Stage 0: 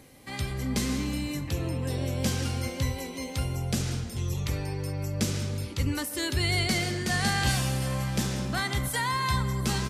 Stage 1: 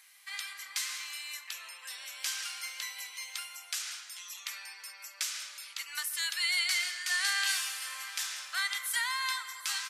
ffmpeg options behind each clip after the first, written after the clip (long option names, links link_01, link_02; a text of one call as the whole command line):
ffmpeg -i in.wav -af "highpass=frequency=1300:width=0.5412,highpass=frequency=1300:width=1.3066" out.wav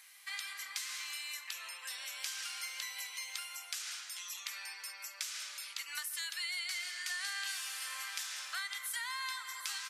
ffmpeg -i in.wav -filter_complex "[0:a]acrossover=split=280[link_01][link_02];[link_02]acompressor=threshold=-39dB:ratio=4[link_03];[link_01][link_03]amix=inputs=2:normalize=0,volume=1dB" out.wav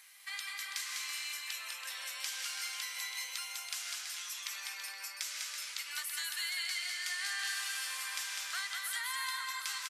ffmpeg -i in.wav -af "aecho=1:1:200|330|414.5|469.4|505.1:0.631|0.398|0.251|0.158|0.1" out.wav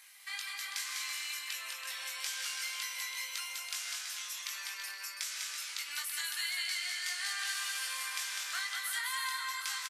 ffmpeg -i in.wav -filter_complex "[0:a]asplit=2[link_01][link_02];[link_02]adelay=21,volume=-4.5dB[link_03];[link_01][link_03]amix=inputs=2:normalize=0" out.wav